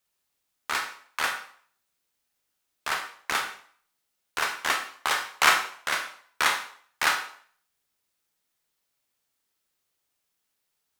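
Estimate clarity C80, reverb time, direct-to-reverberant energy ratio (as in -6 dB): 12.0 dB, 0.55 s, 3.5 dB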